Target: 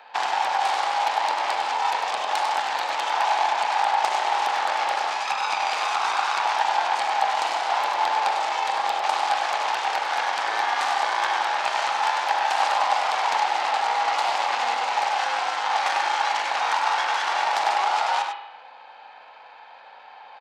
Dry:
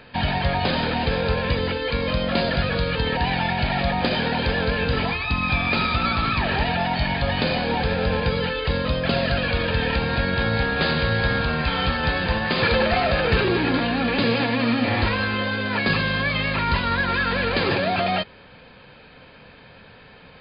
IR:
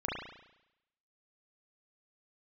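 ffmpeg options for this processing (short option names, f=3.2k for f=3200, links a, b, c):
-filter_complex "[0:a]acrossover=split=1700|4400[a][b][c];[a]acompressor=threshold=-26dB:ratio=4[d];[b]acompressor=threshold=-33dB:ratio=4[e];[c]acompressor=threshold=-43dB:ratio=4[f];[d][e][f]amix=inputs=3:normalize=0,aeval=exprs='0.237*(cos(1*acos(clip(val(0)/0.237,-1,1)))-cos(1*PI/2))+0.0841*(cos(3*acos(clip(val(0)/0.237,-1,1)))-cos(3*PI/2))+0.0473*(cos(4*acos(clip(val(0)/0.237,-1,1)))-cos(4*PI/2))+0.0119*(cos(7*acos(clip(val(0)/0.237,-1,1)))-cos(7*PI/2))+0.00596*(cos(8*acos(clip(val(0)/0.237,-1,1)))-cos(8*PI/2))':c=same,highpass=f=820:t=q:w=7.7,asplit=2[g][h];[h]adelay=99.13,volume=-6dB,highshelf=f=4k:g=-2.23[i];[g][i]amix=inputs=2:normalize=0,asplit=2[j][k];[1:a]atrim=start_sample=2205[l];[k][l]afir=irnorm=-1:irlink=0,volume=-7.5dB[m];[j][m]amix=inputs=2:normalize=0"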